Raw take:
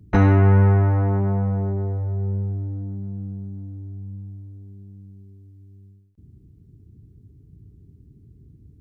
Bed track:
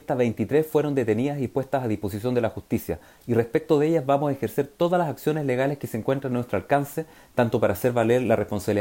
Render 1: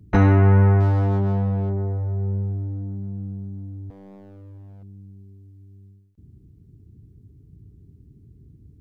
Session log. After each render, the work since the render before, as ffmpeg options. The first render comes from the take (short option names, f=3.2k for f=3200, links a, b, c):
-filter_complex "[0:a]asettb=1/sr,asplit=3[a][b][c];[a]atrim=end=0.804[d];[b]atrim=start=0.8:end=1.7,asetpts=PTS-STARTPTS,afade=t=in:d=0.004:c=qsin,afade=t=out:st=0.896:d=0.004:c=qsin,adynamicsmooth=sensitivity=8:basefreq=920[e];[c]atrim=start=1.696[f];[d][e]acrossfade=d=0.004:c1=hsin:c2=qsin[g];[g][f]acrossfade=d=0.004:c1=qsin:c2=hsin,asettb=1/sr,asplit=3[h][i][j];[h]atrim=end=3.904[k];[i]atrim=start=3.9:end=4.83,asetpts=PTS-STARTPTS,afade=t=in:d=0.004:c=qsin,afade=t=out:st=0.926:d=0.004:c=qsin,aeval=exprs='0.0112*(abs(mod(val(0)/0.0112+3,4)-2)-1)':c=same[l];[j]atrim=start=4.826[m];[k][l]acrossfade=d=0.004:c1=hsin:c2=qsin[n];[n][m]acrossfade=d=0.004:c1=qsin:c2=hsin"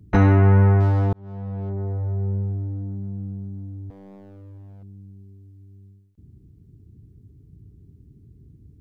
-filter_complex "[0:a]asplit=2[a][b];[a]atrim=end=1.13,asetpts=PTS-STARTPTS,afade=t=out:st=1.126:d=0.004:c=hsin[c];[b]atrim=start=1.13,asetpts=PTS-STARTPTS,afade=t=in:d=0.93[d];[c][d]concat=n=2:v=0:a=1"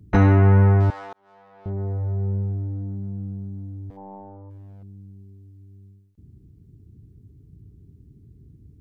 -filter_complex "[0:a]asettb=1/sr,asplit=3[a][b][c];[a]atrim=end=0.904[d];[b]atrim=start=0.9:end=1.66,asetpts=PTS-STARTPTS,afade=t=in:d=0.004:c=qsin,afade=t=out:st=0.756:d=0.004:c=qsin,highpass=930[e];[c]atrim=start=1.656[f];[d][e]acrossfade=d=0.004:c1=hsin:c2=qsin[g];[g][f]acrossfade=d=0.004:c1=qsin:c2=hsin,asplit=3[h][i][j];[h]afade=t=out:st=3.96:d=0.02[k];[i]lowpass=f=860:t=q:w=10,afade=t=in:st=3.96:d=0.02,afade=t=out:st=4.49:d=0.02[l];[j]afade=t=in:st=4.49:d=0.02[m];[k][l][m]amix=inputs=3:normalize=0"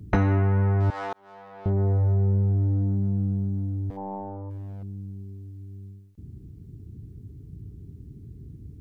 -filter_complex "[0:a]asplit=2[a][b];[b]alimiter=limit=-17.5dB:level=0:latency=1,volume=0.5dB[c];[a][c]amix=inputs=2:normalize=0,acompressor=threshold=-18dB:ratio=10"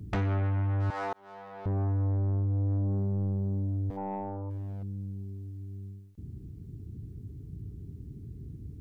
-af "asoftclip=type=tanh:threshold=-25.5dB"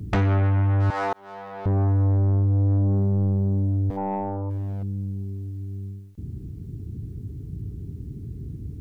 -af "volume=8dB"